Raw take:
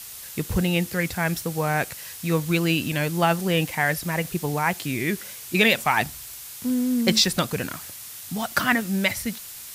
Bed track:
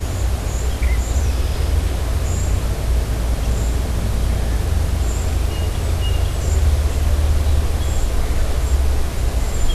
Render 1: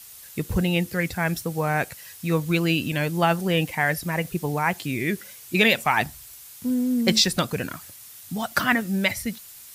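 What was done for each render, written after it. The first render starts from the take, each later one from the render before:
broadband denoise 7 dB, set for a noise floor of −39 dBFS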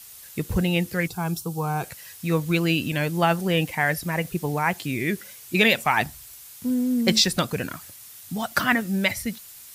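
0:01.07–0:01.84: phaser with its sweep stopped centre 380 Hz, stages 8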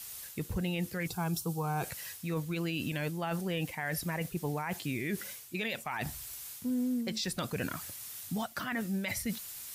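reversed playback
downward compressor 10 to 1, threshold −29 dBFS, peak gain reduction 15.5 dB
reversed playback
brickwall limiter −25 dBFS, peak gain reduction 7.5 dB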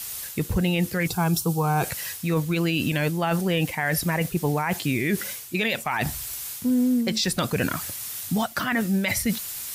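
level +10.5 dB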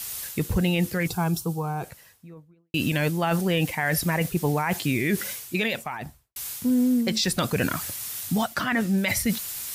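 0:00.67–0:02.74: fade out and dull
0:05.54–0:06.36: fade out and dull
0:08.54–0:08.98: high-shelf EQ 12,000 Hz −10.5 dB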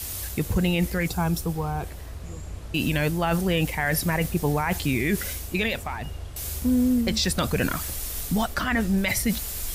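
mix in bed track −18 dB

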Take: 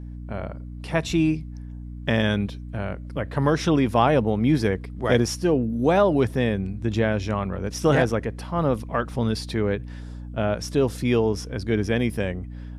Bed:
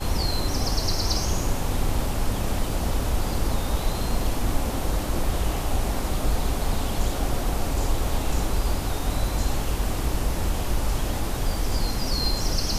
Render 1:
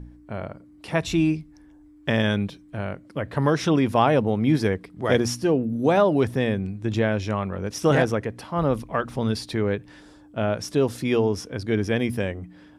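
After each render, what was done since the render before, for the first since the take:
hum removal 60 Hz, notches 4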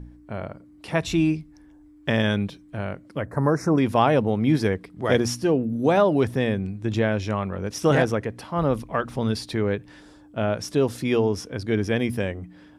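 0:03.25–0:03.78: Butterworth band-reject 3,200 Hz, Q 0.67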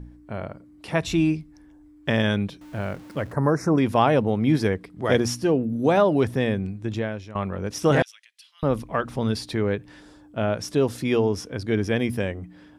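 0:02.61–0:03.33: converter with a step at zero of −42 dBFS
0:06.67–0:07.35: fade out, to −17 dB
0:08.02–0:08.63: four-pole ladder high-pass 2,600 Hz, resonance 35%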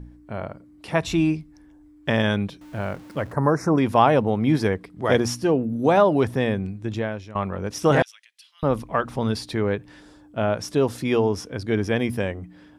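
dynamic equaliser 930 Hz, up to +4 dB, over −37 dBFS, Q 1.2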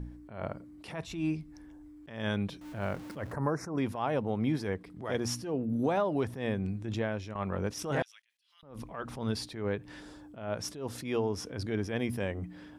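downward compressor 5 to 1, threshold −27 dBFS, peak gain reduction 14.5 dB
level that may rise only so fast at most 100 dB per second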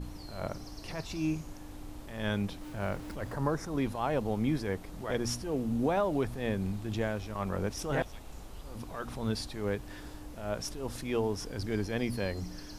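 mix in bed −22 dB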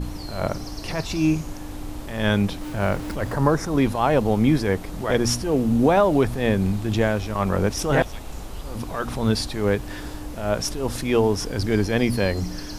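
level +11.5 dB

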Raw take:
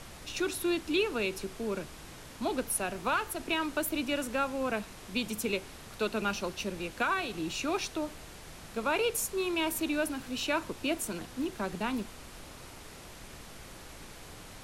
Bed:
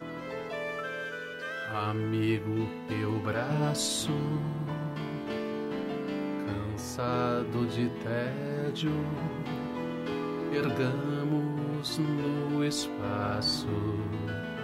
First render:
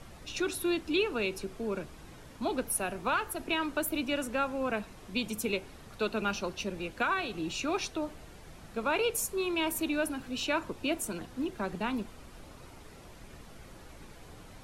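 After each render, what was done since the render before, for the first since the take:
broadband denoise 8 dB, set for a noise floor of −49 dBFS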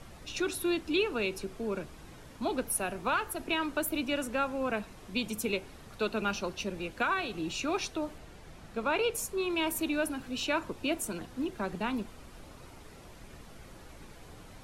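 0:08.18–0:09.50: high-shelf EQ 8,200 Hz −6 dB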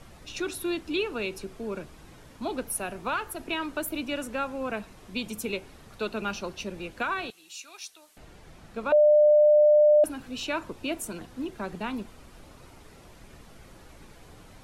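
0:07.30–0:08.17: first difference
0:08.92–0:10.04: beep over 599 Hz −14.5 dBFS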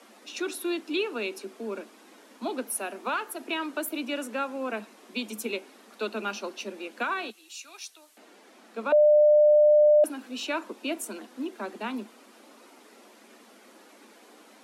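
Butterworth high-pass 210 Hz 96 dB per octave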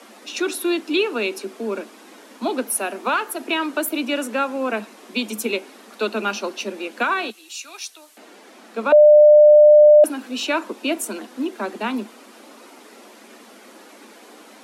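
level +8.5 dB

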